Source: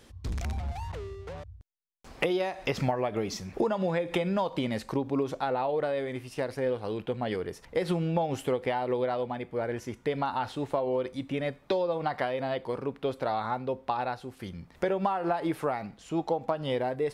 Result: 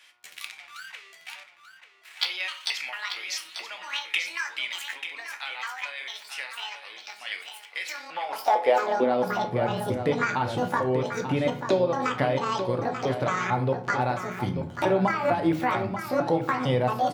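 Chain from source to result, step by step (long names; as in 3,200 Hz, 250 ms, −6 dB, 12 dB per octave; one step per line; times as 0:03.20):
pitch shifter gated in a rhythm +9 semitones, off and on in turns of 225 ms
in parallel at +1 dB: downward compressor, threshold −37 dBFS, peak gain reduction 14 dB
on the sum: hum with harmonics 120 Hz, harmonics 12, −50 dBFS −4 dB per octave
high-pass filter sweep 2,300 Hz → 110 Hz, 0:07.89–0:09.49
single-tap delay 888 ms −8.5 dB
on a send at −5 dB: convolution reverb RT60 0.50 s, pre-delay 3 ms
on the sum: one half of a high-frequency compander decoder only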